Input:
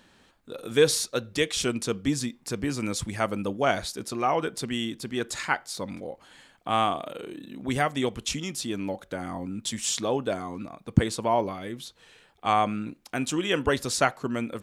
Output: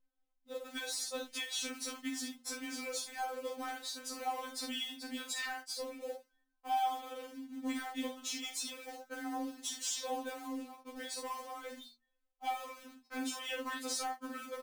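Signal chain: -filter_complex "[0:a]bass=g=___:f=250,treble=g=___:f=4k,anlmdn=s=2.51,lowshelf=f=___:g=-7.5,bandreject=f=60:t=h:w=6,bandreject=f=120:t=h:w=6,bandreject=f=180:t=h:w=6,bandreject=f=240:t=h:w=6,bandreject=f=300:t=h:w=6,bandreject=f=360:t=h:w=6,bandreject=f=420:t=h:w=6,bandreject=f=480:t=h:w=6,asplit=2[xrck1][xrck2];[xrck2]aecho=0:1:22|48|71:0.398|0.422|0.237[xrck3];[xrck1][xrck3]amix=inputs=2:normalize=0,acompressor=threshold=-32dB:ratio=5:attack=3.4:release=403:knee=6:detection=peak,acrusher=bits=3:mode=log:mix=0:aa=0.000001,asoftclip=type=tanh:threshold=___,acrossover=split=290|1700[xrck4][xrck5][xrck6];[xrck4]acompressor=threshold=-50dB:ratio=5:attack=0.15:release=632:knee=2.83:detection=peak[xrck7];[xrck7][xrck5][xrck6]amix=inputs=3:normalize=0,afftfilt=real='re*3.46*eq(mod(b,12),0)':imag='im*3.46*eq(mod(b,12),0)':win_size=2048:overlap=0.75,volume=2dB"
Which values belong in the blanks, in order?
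-3, -1, 280, -27.5dB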